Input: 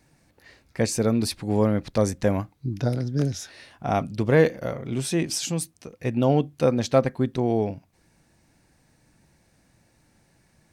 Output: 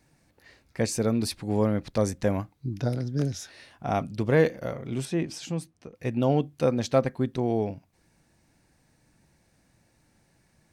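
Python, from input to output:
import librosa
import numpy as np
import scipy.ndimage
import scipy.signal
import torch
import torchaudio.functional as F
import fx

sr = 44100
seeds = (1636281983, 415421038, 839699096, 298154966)

y = fx.lowpass(x, sr, hz=2100.0, slope=6, at=(5.05, 5.95))
y = F.gain(torch.from_numpy(y), -3.0).numpy()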